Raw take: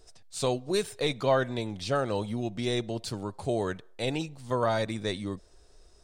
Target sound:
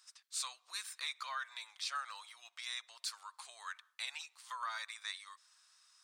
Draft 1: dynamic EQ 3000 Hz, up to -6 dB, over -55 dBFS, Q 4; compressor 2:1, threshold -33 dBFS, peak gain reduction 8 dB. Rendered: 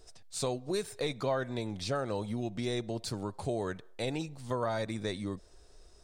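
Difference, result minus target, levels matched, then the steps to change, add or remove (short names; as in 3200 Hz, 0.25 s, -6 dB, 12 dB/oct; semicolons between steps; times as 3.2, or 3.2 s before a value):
1000 Hz band -2.5 dB
add after compressor: Chebyshev high-pass 1100 Hz, order 4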